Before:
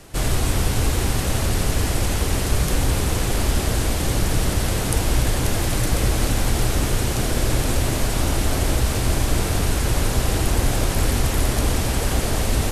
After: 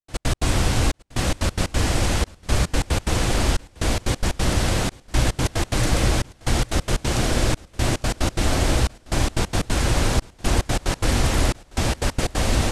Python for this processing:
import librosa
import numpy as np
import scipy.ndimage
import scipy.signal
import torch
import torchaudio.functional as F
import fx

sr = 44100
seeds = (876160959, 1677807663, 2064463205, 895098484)

y = scipy.signal.sosfilt(scipy.signal.butter(2, 7900.0, 'lowpass', fs=sr, output='sos'), x)
y = fx.low_shelf(y, sr, hz=160.0, db=-3.0)
y = fx.notch(y, sr, hz=420.0, q=12.0)
y = fx.step_gate(y, sr, bpm=181, pattern='.x.x.xxxxxx...xx', floor_db=-60.0, edge_ms=4.5)
y = fx.echo_feedback(y, sr, ms=854, feedback_pct=30, wet_db=-23.5)
y = y * 10.0 ** (2.5 / 20.0)